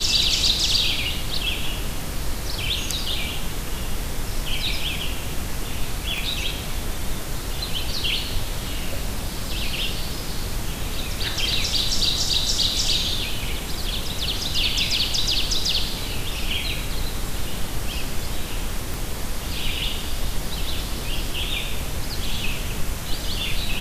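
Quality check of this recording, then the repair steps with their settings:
6.18 pop
18.94 pop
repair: de-click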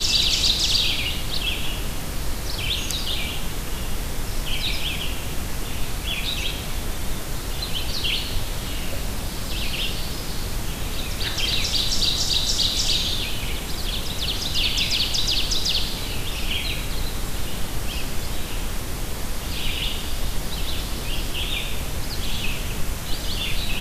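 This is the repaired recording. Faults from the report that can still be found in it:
6.18 pop
18.94 pop

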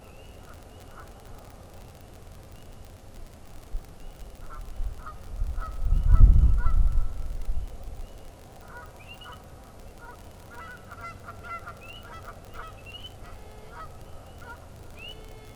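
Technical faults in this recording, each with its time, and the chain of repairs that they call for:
crackle 39/s -35 dBFS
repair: de-click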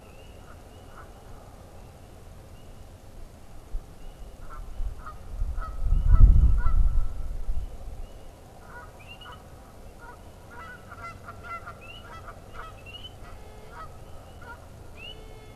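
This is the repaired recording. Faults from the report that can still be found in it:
none

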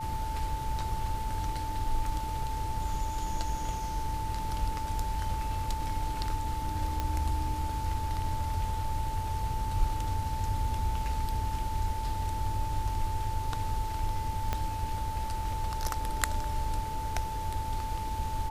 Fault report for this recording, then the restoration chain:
tone 880 Hz -35 dBFS
7 pop -17 dBFS
14.53 pop -16 dBFS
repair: de-click; notch 880 Hz, Q 30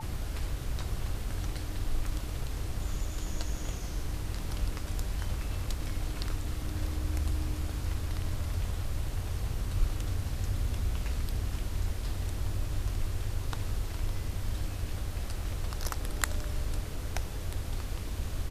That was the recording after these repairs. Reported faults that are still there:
14.53 pop

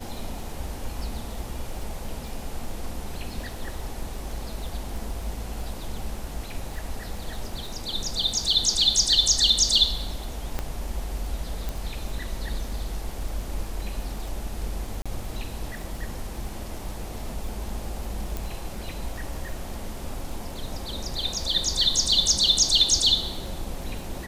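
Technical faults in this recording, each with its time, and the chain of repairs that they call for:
crackle 26/s -34 dBFS
10.59 pop -14 dBFS
11.69 pop
15.02–15.06 gap 36 ms
18.37 pop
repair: de-click; interpolate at 15.02, 36 ms

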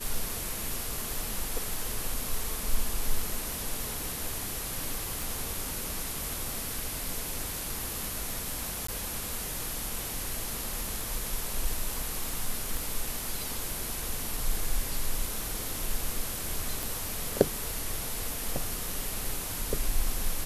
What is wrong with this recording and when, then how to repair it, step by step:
5.22 pop
8.87–8.88 gap 14 ms
12.77 pop
16.83 pop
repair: de-click; interpolate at 8.87, 14 ms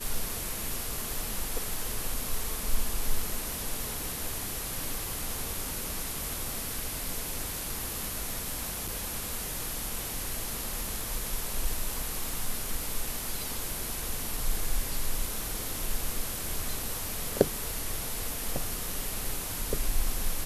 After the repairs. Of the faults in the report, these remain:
12.77 pop

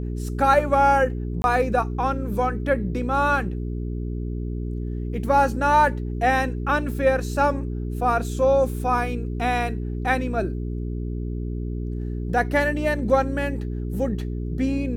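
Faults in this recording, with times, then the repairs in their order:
hum 60 Hz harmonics 7 -28 dBFS
1.42–1.44 gap 21 ms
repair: de-hum 60 Hz, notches 7; interpolate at 1.42, 21 ms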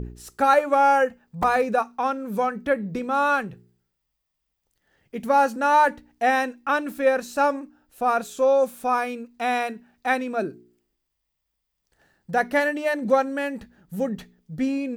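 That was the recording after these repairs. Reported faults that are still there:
none

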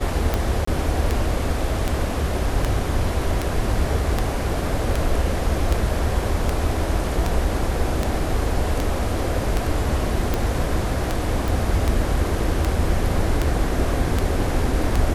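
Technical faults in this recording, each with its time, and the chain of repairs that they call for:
tick 78 rpm -7 dBFS
0.65–0.67 gap 24 ms
11.48 pop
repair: de-click; interpolate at 0.65, 24 ms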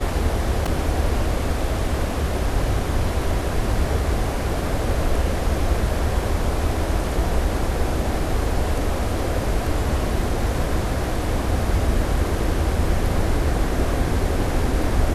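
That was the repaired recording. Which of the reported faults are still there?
none

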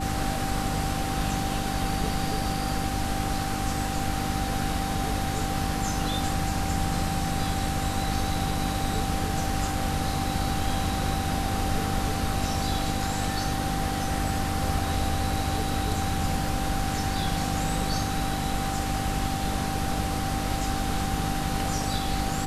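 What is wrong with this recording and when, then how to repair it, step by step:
hum 50 Hz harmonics 6 -32 dBFS
tone 780 Hz -32 dBFS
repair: notch 780 Hz, Q 30; de-hum 50 Hz, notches 6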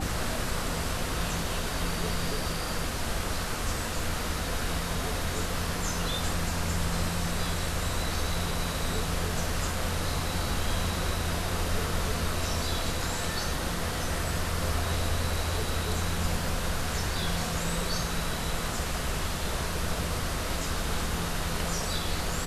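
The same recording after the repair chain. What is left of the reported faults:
none

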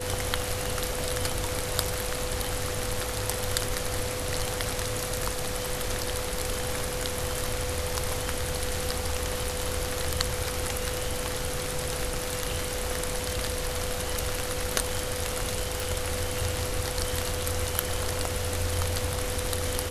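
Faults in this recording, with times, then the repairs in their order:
tone 500 Hz -35 dBFS
15.8 pop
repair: de-click; notch 500 Hz, Q 30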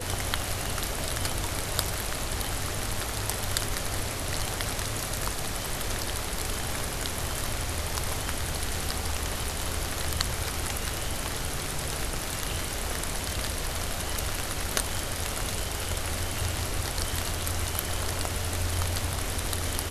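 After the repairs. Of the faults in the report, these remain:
none

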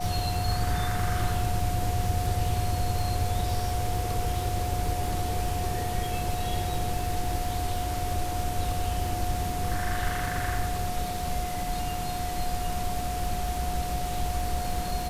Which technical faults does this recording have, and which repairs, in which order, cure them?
crackle 56/s -33 dBFS
tone 720 Hz -32 dBFS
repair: de-click; notch 720 Hz, Q 30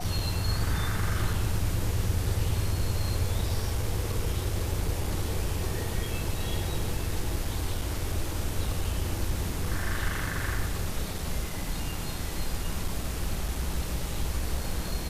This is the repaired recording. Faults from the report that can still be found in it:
none

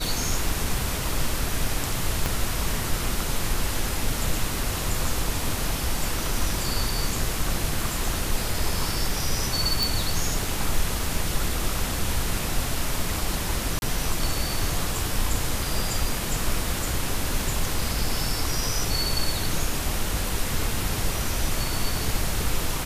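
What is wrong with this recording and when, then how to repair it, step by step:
2.26 pop
9.83 pop
13.79–13.82 gap 31 ms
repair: de-click; interpolate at 13.79, 31 ms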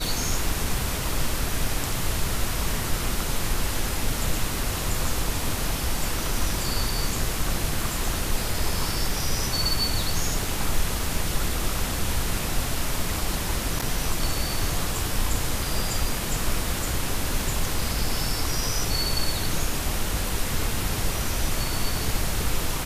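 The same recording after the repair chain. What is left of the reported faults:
2.26 pop

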